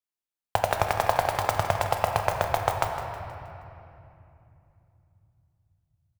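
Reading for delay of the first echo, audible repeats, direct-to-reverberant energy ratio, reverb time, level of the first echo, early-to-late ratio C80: 0.158 s, 2, 2.0 dB, 2.8 s, -11.5 dB, 4.5 dB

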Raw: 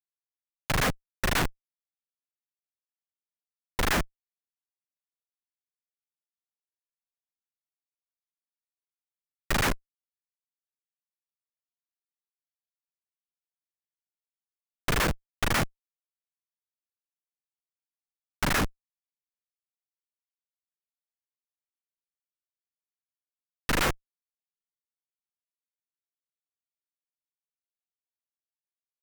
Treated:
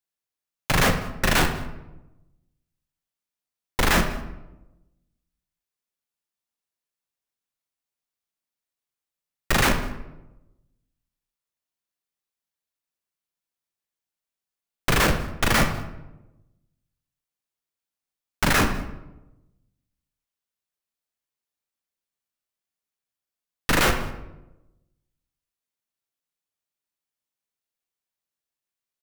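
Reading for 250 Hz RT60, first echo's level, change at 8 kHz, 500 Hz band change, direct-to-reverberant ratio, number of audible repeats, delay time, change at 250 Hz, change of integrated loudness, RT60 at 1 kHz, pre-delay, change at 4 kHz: 1.2 s, -22.5 dB, +5.5 dB, +6.5 dB, 5.5 dB, 1, 0.198 s, +7.0 dB, +5.5 dB, 0.90 s, 17 ms, +6.0 dB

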